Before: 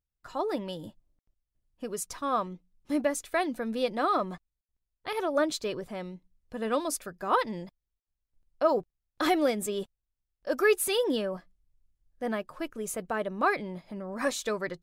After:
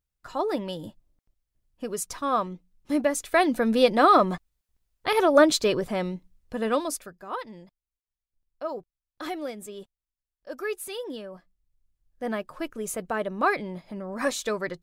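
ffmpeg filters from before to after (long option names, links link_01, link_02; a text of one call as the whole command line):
ffmpeg -i in.wav -af "volume=20dB,afade=type=in:start_time=3.11:duration=0.52:silence=0.501187,afade=type=out:start_time=6.12:duration=0.75:silence=0.398107,afade=type=out:start_time=6.87:duration=0.38:silence=0.334965,afade=type=in:start_time=11.29:duration=1.21:silence=0.298538" out.wav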